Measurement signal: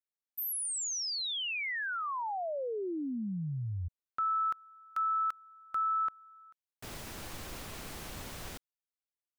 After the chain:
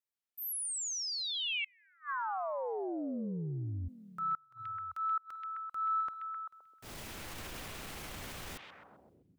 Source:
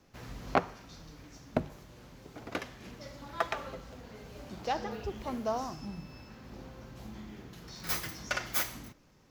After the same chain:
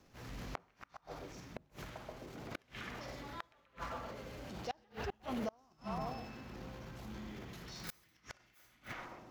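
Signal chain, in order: transient shaper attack -6 dB, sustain +8 dB; repeats whose band climbs or falls 130 ms, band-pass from 2.6 kHz, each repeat -0.7 oct, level -0.5 dB; inverted gate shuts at -26 dBFS, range -32 dB; trim -2 dB

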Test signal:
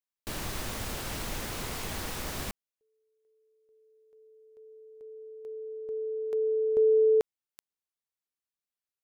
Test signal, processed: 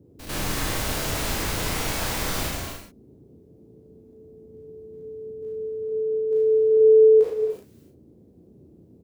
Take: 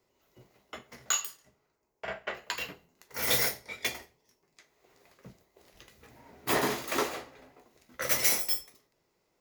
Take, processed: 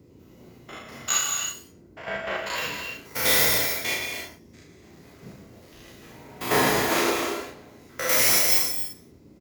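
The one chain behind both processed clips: spectrogram pixelated in time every 100 ms; gated-style reverb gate 330 ms flat, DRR 1.5 dB; band noise 62–390 Hz -60 dBFS; doubling 35 ms -3 dB; trim +6.5 dB

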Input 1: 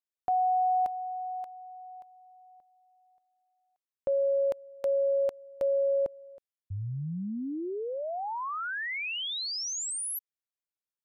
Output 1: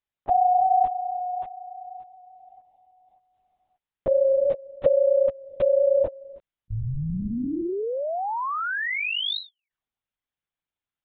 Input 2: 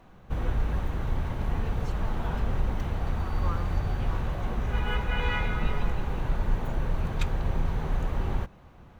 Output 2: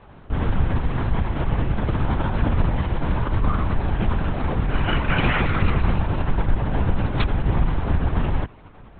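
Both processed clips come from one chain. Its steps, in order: LPC vocoder at 8 kHz whisper; trim +6.5 dB

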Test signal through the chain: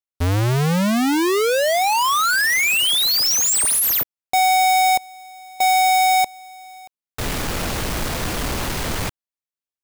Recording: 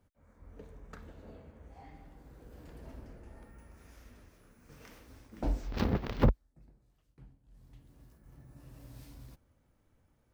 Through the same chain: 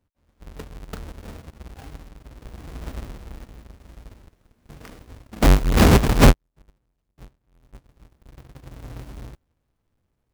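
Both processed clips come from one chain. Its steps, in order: square wave that keeps the level; waveshaping leveller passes 3; upward expansion 1.5:1, over -32 dBFS; trim +7 dB

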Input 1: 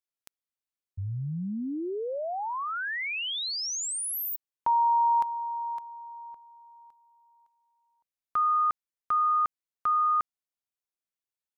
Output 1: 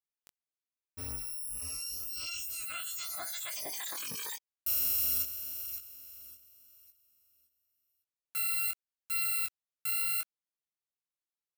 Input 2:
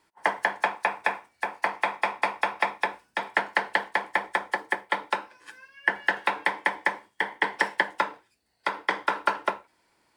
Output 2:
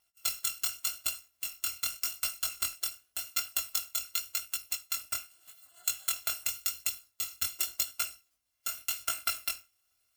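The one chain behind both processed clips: bit-reversed sample order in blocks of 256 samples; chorus 0.87 Hz, delay 17.5 ms, depth 6.7 ms; trim -3.5 dB

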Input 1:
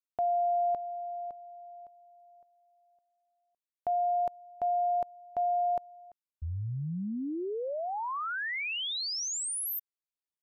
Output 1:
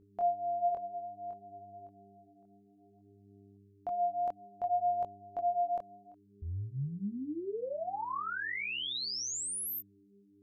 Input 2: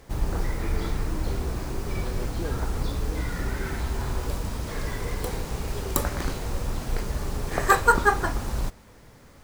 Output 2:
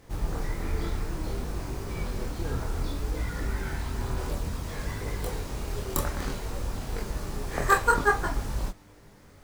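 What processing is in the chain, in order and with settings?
mains buzz 100 Hz, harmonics 4, -59 dBFS -1 dB/octave; chorus voices 2, 0.59 Hz, delay 23 ms, depth 3.5 ms

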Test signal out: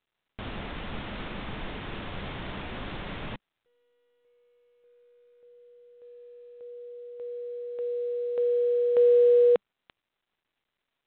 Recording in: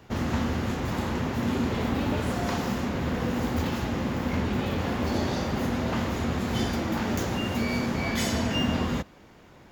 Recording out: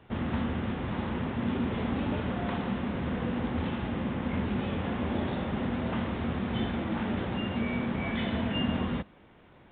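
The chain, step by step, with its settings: dynamic bell 200 Hz, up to +4 dB, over -45 dBFS, Q 3.3; trim -4.5 dB; µ-law 64 kbps 8 kHz

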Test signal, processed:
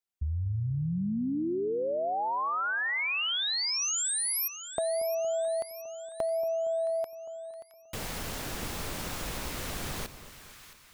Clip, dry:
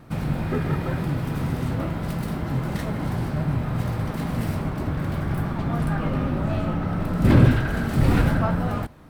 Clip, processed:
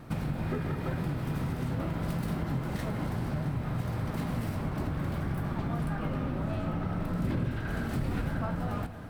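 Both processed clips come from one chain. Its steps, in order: compression 6:1, threshold -29 dBFS; on a send: two-band feedback delay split 1.1 kHz, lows 232 ms, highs 668 ms, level -13 dB

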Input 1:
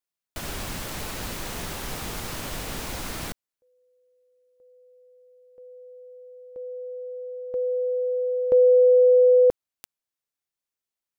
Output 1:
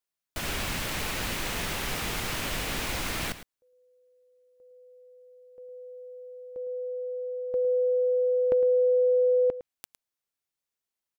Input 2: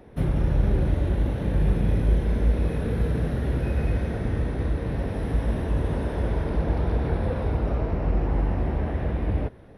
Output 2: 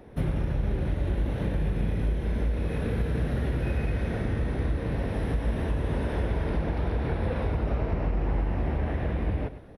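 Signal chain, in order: dynamic bell 2.4 kHz, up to +6 dB, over -45 dBFS, Q 0.98; compression 6:1, threshold -23 dBFS; delay 108 ms -13.5 dB

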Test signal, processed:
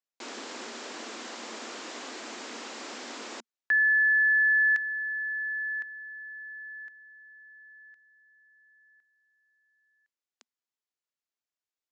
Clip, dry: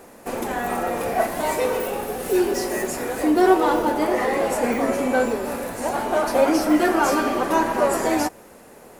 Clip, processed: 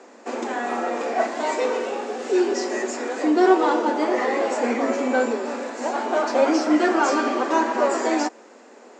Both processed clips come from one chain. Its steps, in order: Chebyshev band-pass 230–7400 Hz, order 5

